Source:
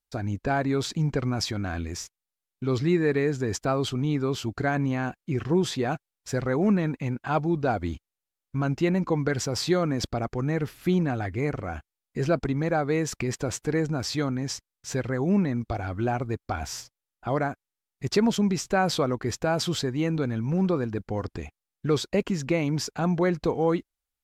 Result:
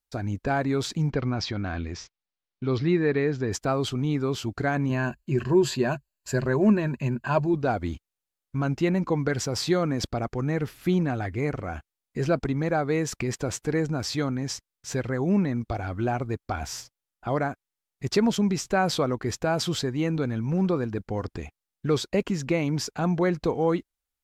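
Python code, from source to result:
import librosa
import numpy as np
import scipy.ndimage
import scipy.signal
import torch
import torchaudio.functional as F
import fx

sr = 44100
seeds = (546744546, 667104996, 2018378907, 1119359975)

y = fx.lowpass(x, sr, hz=5200.0, slope=24, at=(1.1, 3.52))
y = fx.ripple_eq(y, sr, per_octave=1.4, db=11, at=(4.89, 7.54))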